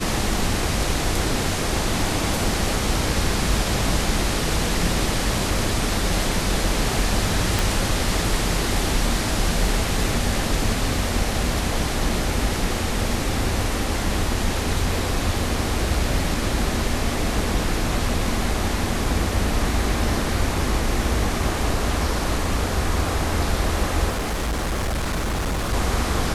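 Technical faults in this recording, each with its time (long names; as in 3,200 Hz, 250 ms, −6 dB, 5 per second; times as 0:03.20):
0:07.59: click
0:24.09–0:25.74: clipping −20.5 dBFS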